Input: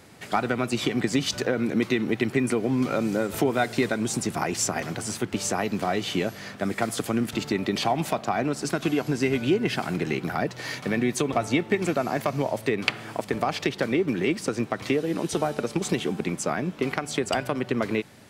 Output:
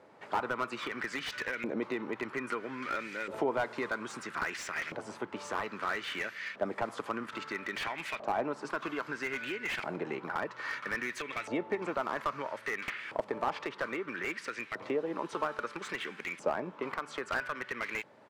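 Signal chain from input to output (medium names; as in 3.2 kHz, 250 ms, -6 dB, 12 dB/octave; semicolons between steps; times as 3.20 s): peaking EQ 730 Hz -13.5 dB 0.24 oct; in parallel at -3 dB: peak limiter -16 dBFS, peak gain reduction 11 dB; on the sum: resampled via 32 kHz; LFO band-pass saw up 0.61 Hz 670–2300 Hz; slew-rate limiter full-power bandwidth 55 Hz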